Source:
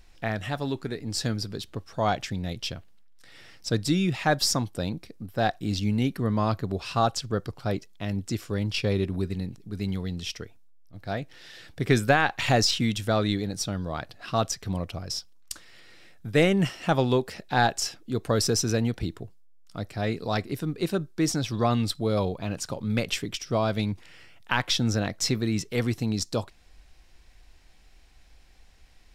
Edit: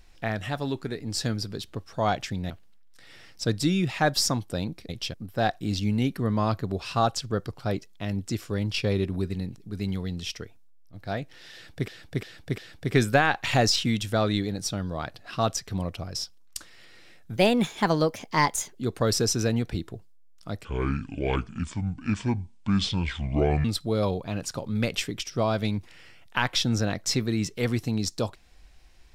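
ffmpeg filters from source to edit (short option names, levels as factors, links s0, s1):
-filter_complex "[0:a]asplit=11[s0][s1][s2][s3][s4][s5][s6][s7][s8][s9][s10];[s0]atrim=end=2.502[s11];[s1]atrim=start=2.748:end=5.142[s12];[s2]atrim=start=2.498:end=2.752[s13];[s3]atrim=start=5.138:end=11.882[s14];[s4]atrim=start=11.528:end=11.882[s15];[s5]atrim=start=11.528:end=11.882[s16];[s6]atrim=start=11.528:end=16.314[s17];[s7]atrim=start=16.31:end=18.04,asetpts=PTS-STARTPTS,asetrate=54684,aresample=44100[s18];[s8]atrim=start=18.036:end=19.934[s19];[s9]atrim=start=19.93:end=21.79,asetpts=PTS-STARTPTS,asetrate=27342,aresample=44100[s20];[s10]atrim=start=21.786[s21];[s11][s12]acrossfade=d=0.004:c1=hsin:c2=hsin[s22];[s22][s13]acrossfade=d=0.004:c1=hsin:c2=hsin[s23];[s23][s14]acrossfade=d=0.004:c1=hsin:c2=hsin[s24];[s24][s15]acrossfade=d=0.004:c1=hsin:c2=hsin[s25];[s25][s16]acrossfade=d=0.004:c1=hsin:c2=hsin[s26];[s26][s17]acrossfade=d=0.004:c1=hsin:c2=hsin[s27];[s27][s18]acrossfade=d=0.004:c1=hsin:c2=hsin[s28];[s28][s19]acrossfade=d=0.004:c1=hsin:c2=hsin[s29];[s29][s20]acrossfade=d=0.004:c1=hsin:c2=hsin[s30];[s30][s21]acrossfade=d=0.004:c1=hsin:c2=hsin"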